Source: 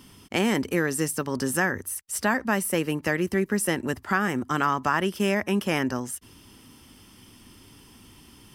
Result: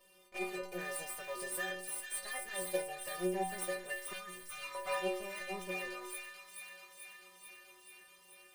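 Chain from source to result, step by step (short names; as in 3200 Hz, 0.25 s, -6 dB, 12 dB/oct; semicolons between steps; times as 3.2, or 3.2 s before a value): minimum comb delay 1.7 ms; resonant low shelf 230 Hz -11.5 dB, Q 1.5; metallic resonator 180 Hz, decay 0.6 s, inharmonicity 0.008; thin delay 0.436 s, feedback 73%, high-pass 2100 Hz, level -5 dB; 0.81–1.71 companded quantiser 6-bit; 2.49–3.09 transient shaper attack +4 dB, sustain -4 dB; 4.13–4.75 bell 560 Hz -13.5 dB 3 oct; gain +5.5 dB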